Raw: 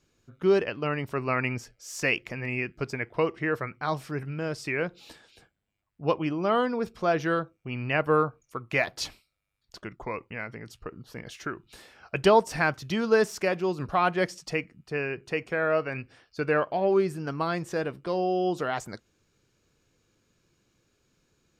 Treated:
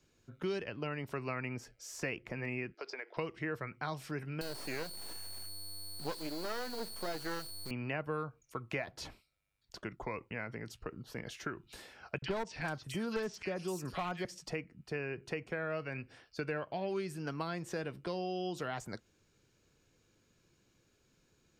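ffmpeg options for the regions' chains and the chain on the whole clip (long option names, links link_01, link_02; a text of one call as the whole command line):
ffmpeg -i in.wav -filter_complex "[0:a]asettb=1/sr,asplit=3[link_01][link_02][link_03];[link_01]atrim=end=2.744[link_04];[link_02]atrim=start=2.74:end=3.17,asetpts=PTS-STARTPTS,afade=type=in:duration=0.004:curve=qsin,afade=type=out:start_time=0.426:duration=0.004:curve=qsin,highpass=frequency=400:width=0.5412,highpass=frequency=400:width=1.3066,highshelf=frequency=6900:width_type=q:width=3:gain=-12,acompressor=threshold=-35dB:ratio=6:attack=3.2:release=140:knee=1:detection=peak[link_05];[link_03]atrim=start=3.166[link_06];[link_04][link_05]acrossfade=duration=0.004:curve1=hsin:curve2=qsin[link_07];[link_07][link_06]acrossfade=duration=0.004:curve1=qsin:curve2=hsin,asettb=1/sr,asplit=3[link_08][link_09][link_10];[link_08]atrim=end=4.414[link_11];[link_09]atrim=start=4.41:end=7.71,asetpts=PTS-STARTPTS,afade=type=in:duration=0.004:curve=qsin,afade=type=out:start_time=3.296:duration=0.004:curve=qsin,aeval=exprs='val(0)+0.0251*sin(2*PI*4400*n/s)':channel_layout=same,acrusher=bits=3:dc=4:mix=0:aa=0.000001[link_12];[link_10]atrim=start=7.706[link_13];[link_11][link_12]acrossfade=duration=0.004:curve1=hsin:curve2=qsin[link_14];[link_14][link_13]acrossfade=duration=0.004:curve1=qsin:curve2=hsin,asettb=1/sr,asplit=3[link_15][link_16][link_17];[link_15]atrim=end=12.184[link_18];[link_16]atrim=start=12.18:end=14.25,asetpts=PTS-STARTPTS,afade=type=in:duration=0.004:curve=qsin,afade=type=out:start_time=2.066:duration=0.004:curve=qsin,acrossover=split=1900|6000[link_19][link_20][link_21];[link_19]adelay=40[link_22];[link_21]adelay=440[link_23];[link_22][link_20][link_23]amix=inputs=3:normalize=0,atrim=end_sample=91287,aeval=exprs='clip(val(0),-1,0.126)':channel_layout=same[link_24];[link_17]atrim=start=14.246[link_25];[link_18][link_24]acrossfade=duration=0.004:curve1=hsin:curve2=qsin[link_26];[link_26][link_25]acrossfade=duration=0.004:curve1=qsin:curve2=hsin,bandreject=frequency=1200:width=18,acrossover=split=200|1800[link_27][link_28][link_29];[link_27]acompressor=threshold=-44dB:ratio=4[link_30];[link_28]acompressor=threshold=-37dB:ratio=4[link_31];[link_29]acompressor=threshold=-45dB:ratio=4[link_32];[link_30][link_31][link_32]amix=inputs=3:normalize=0,volume=-1.5dB" out.wav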